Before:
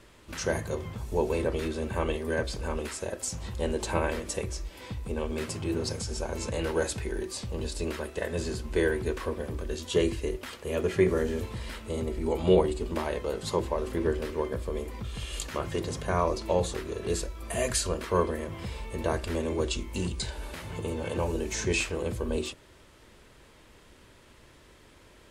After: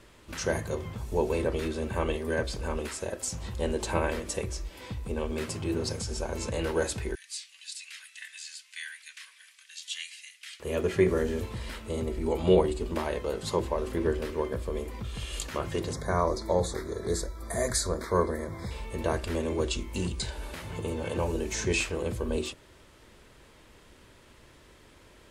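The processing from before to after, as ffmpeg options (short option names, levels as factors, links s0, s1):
-filter_complex "[0:a]asettb=1/sr,asplit=3[s0][s1][s2];[s0]atrim=end=7.154[s3];[s1]atrim=start=7.15:end=10.6,asetpts=PTS-STARTPTS,afade=t=in:d=0.004:c=qsin,afade=t=out:st=3.446:d=0.004:c=qsin,asuperpass=centerf=5000:order=8:qfactor=0.55[s4];[s2]atrim=start=10.596[s5];[s3][s4]acrossfade=d=0.004:c1=hsin:c2=qsin[s6];[s6][s5]acrossfade=d=0.004:c1=qsin:c2=hsin,asettb=1/sr,asplit=3[s7][s8][s9];[s7]atrim=end=15.934[s10];[s8]atrim=start=15.93:end=18.71,asetpts=PTS-STARTPTS,afade=t=in:d=0.004:c=qsin,afade=t=out:st=2.776:d=0.004:c=qsin,asuperstop=centerf=2800:order=8:qfactor=2.2[s11];[s9]atrim=start=18.706[s12];[s10][s11]acrossfade=d=0.004:c1=hsin:c2=qsin[s13];[s13][s12]acrossfade=d=0.004:c1=qsin:c2=hsin"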